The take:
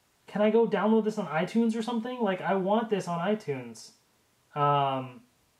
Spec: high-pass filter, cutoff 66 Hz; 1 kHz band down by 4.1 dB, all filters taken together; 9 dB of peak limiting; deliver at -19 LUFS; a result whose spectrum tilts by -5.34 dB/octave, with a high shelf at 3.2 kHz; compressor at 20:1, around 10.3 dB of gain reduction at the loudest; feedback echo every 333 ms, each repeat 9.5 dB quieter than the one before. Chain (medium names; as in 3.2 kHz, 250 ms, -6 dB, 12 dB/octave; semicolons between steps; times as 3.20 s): high-pass 66 Hz; peaking EQ 1 kHz -6 dB; treble shelf 3.2 kHz +3.5 dB; compression 20:1, threshold -29 dBFS; peak limiter -29.5 dBFS; feedback delay 333 ms, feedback 33%, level -9.5 dB; trim +19.5 dB